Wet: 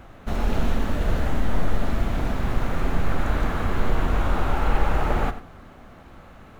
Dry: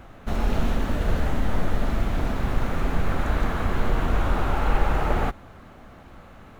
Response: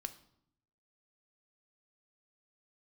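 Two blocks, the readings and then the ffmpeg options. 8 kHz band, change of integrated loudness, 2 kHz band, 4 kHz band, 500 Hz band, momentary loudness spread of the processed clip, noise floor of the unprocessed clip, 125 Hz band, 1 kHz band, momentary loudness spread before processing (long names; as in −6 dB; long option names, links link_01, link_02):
can't be measured, 0.0 dB, 0.0 dB, 0.0 dB, 0.0 dB, 3 LU, −47 dBFS, 0.0 dB, 0.0 dB, 3 LU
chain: -filter_complex "[0:a]asplit=2[link_01][link_02];[1:a]atrim=start_sample=2205,adelay=91[link_03];[link_02][link_03]afir=irnorm=-1:irlink=0,volume=-10dB[link_04];[link_01][link_04]amix=inputs=2:normalize=0"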